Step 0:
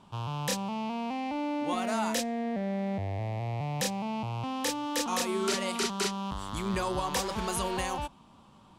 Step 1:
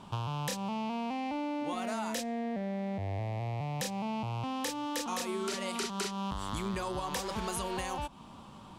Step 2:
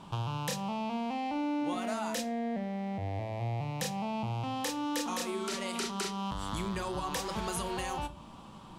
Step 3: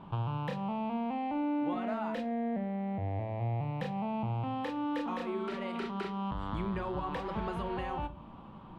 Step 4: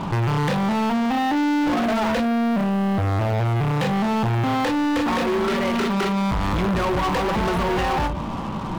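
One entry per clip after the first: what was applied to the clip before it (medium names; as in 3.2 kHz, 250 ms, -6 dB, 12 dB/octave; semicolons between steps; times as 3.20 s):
compression 12:1, threshold -38 dBFS, peak gain reduction 14 dB; trim +6.5 dB
reverberation, pre-delay 6 ms, DRR 9.5 dB
distance through air 500 m; trim +1.5 dB
waveshaping leveller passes 5; trim +4 dB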